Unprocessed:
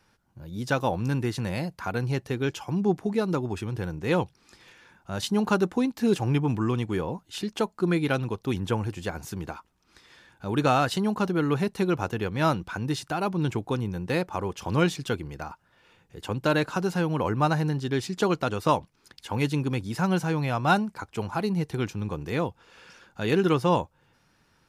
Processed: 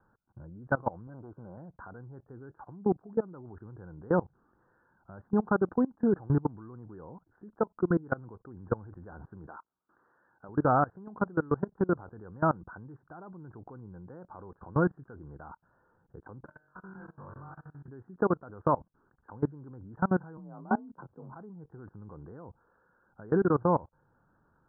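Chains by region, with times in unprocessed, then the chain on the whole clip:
0:01.07–0:01.57: linear-phase brick-wall low-pass 1,600 Hz + low-shelf EQ 91 Hz −11.5 dB + saturating transformer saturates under 390 Hz
0:09.47–0:10.49: high-pass filter 280 Hz 6 dB per octave + low-shelf EQ 380 Hz −4 dB
0:16.45–0:17.88: guitar amp tone stack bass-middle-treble 5-5-5 + downward compressor 12 to 1, threshold −44 dBFS + flutter between parallel walls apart 3.6 metres, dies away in 0.8 s
0:20.37–0:21.36: Bessel low-pass filter 610 Hz + double-tracking delay 22 ms −9 dB + frequency shifter +39 Hz
whole clip: Butterworth low-pass 1,600 Hz 96 dB per octave; output level in coarse steps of 23 dB

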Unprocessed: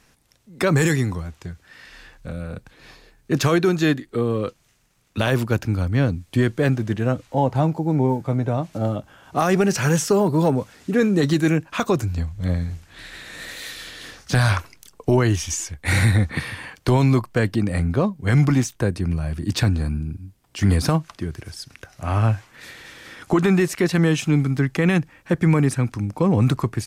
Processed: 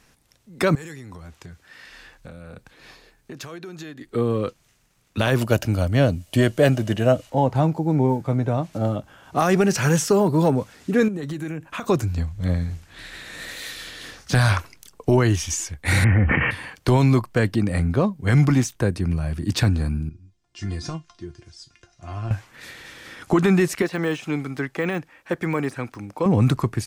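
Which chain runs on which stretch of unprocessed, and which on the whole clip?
0:00.75–0:04.01: downward compressor 16 to 1, threshold −31 dBFS + low-shelf EQ 190 Hz −6 dB
0:05.41–0:07.30: high-shelf EQ 4,600 Hz +8.5 dB + hollow resonant body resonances 620/2,900 Hz, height 13 dB, ringing for 30 ms
0:11.08–0:11.84: downward compressor 16 to 1, threshold −25 dBFS + parametric band 4,900 Hz −7.5 dB 0.75 octaves
0:16.04–0:16.51: gap after every zero crossing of 0.077 ms + Chebyshev low-pass filter 3,100 Hz, order 10 + level that may fall only so fast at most 22 dB per second
0:20.09–0:22.31: low-pass filter 6,800 Hz 24 dB per octave + bass and treble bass +5 dB, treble +7 dB + tuned comb filter 350 Hz, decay 0.17 s, mix 90%
0:23.82–0:26.26: de-essing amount 85% + bass and treble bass −14 dB, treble −3 dB
whole clip: no processing

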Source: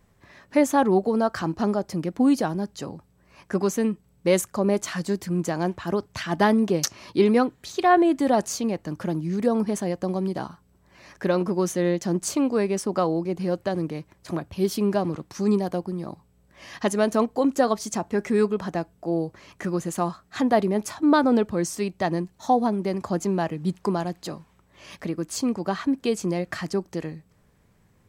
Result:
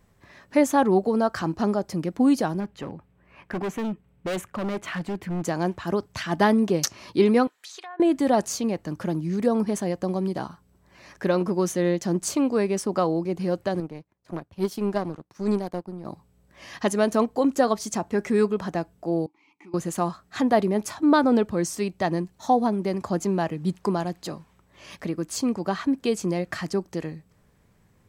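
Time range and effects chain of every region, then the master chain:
0:02.60–0:05.44: high shelf with overshoot 3,700 Hz −11 dB, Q 1.5 + hard clipping −25.5 dBFS
0:07.47–0:08.00: high-pass filter 1,100 Hz + treble cut that deepens with the level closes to 1,500 Hz, closed at −21.5 dBFS + downward compressor 5 to 1, threshold −38 dBFS
0:13.80–0:16.05: high-pass filter 58 Hz + power curve on the samples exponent 1.4 + one half of a high-frequency compander decoder only
0:19.26–0:19.74: formant filter u + spectral tilt +3 dB per octave
whole clip: no processing

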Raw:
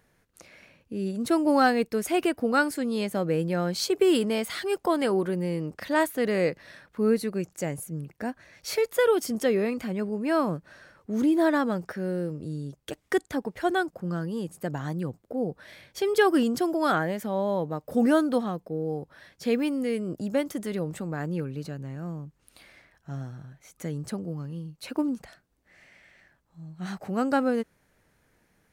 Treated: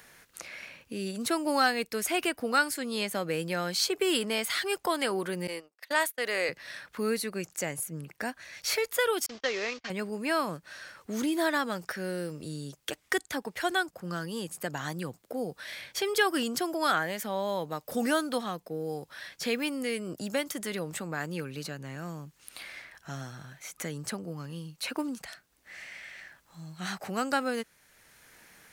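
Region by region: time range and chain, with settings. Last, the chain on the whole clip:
0:05.47–0:06.49: high-pass filter 430 Hz + noise gate −37 dBFS, range −32 dB
0:09.26–0:09.90: variable-slope delta modulation 32 kbit/s + noise gate −35 dBFS, range −42 dB + parametric band 170 Hz −15 dB 1.5 octaves
whole clip: tilt shelving filter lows −7.5 dB, about 900 Hz; multiband upward and downward compressor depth 40%; level −1.5 dB

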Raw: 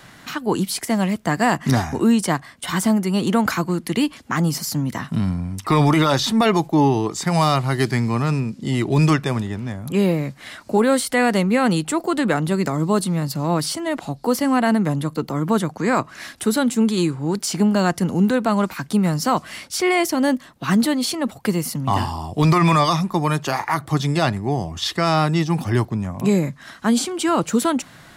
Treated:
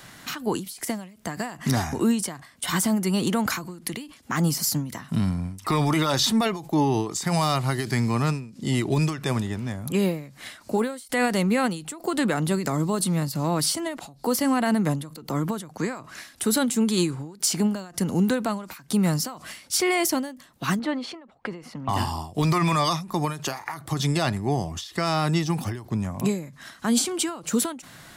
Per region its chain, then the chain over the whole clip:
0:20.79–0:21.89: low-pass filter 2,100 Hz + parametric band 120 Hz −10.5 dB 2 octaves
whole clip: brickwall limiter −11.5 dBFS; high-shelf EQ 4,900 Hz +7.5 dB; every ending faded ahead of time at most 110 dB per second; level −2.5 dB

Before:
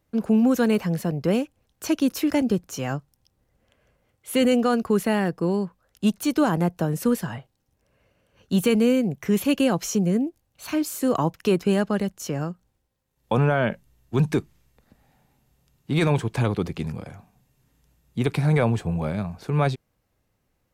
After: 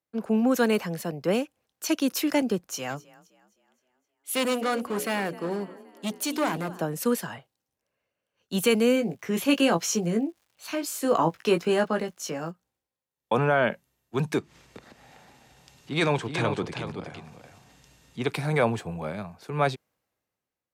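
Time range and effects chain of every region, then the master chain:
0:02.64–0:06.81: mains-hum notches 60/120/180/240/300/360/420/480 Hz + echo with shifted repeats 260 ms, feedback 63%, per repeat +30 Hz, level −19 dB + gain into a clipping stage and back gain 19.5 dB
0:08.95–0:12.50: high-shelf EQ 9,400 Hz −8 dB + double-tracking delay 18 ms −6 dB + surface crackle 340 per second −50 dBFS
0:14.38–0:18.30: low-pass filter 6,900 Hz + upward compression, threshold −24 dBFS + single-tap delay 378 ms −6 dB
whole clip: high-pass filter 430 Hz 6 dB per octave; multiband upward and downward expander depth 40%; level +1 dB

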